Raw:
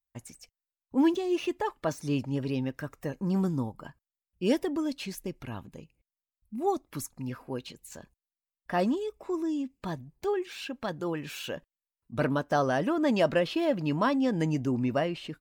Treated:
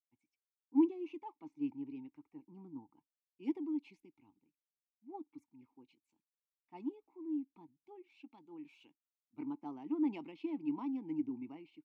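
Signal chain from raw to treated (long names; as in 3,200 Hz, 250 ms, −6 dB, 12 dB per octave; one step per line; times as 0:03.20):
formant filter u
tempo change 1.3×
multiband upward and downward expander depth 70%
level −6 dB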